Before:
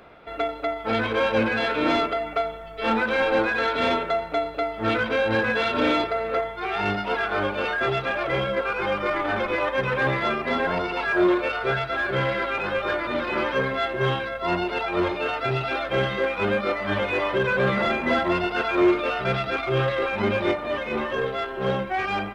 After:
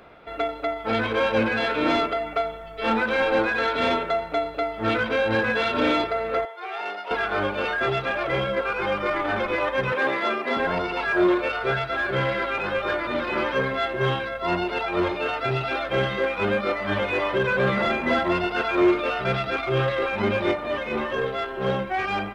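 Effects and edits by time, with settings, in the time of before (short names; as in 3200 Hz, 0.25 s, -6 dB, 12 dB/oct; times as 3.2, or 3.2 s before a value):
6.45–7.11 ladder high-pass 390 Hz, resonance 25%
9.92–10.57 HPF 230 Hz 24 dB/oct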